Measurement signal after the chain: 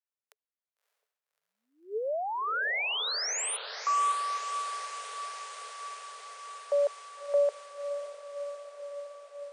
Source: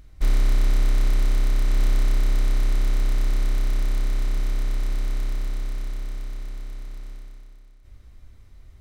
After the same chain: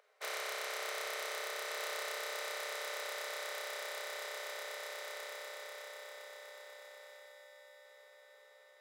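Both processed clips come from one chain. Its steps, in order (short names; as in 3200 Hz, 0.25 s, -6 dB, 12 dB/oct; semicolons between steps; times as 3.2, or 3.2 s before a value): rippled Chebyshev high-pass 420 Hz, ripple 3 dB; diffused feedback echo 0.61 s, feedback 76%, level -11 dB; mismatched tape noise reduction decoder only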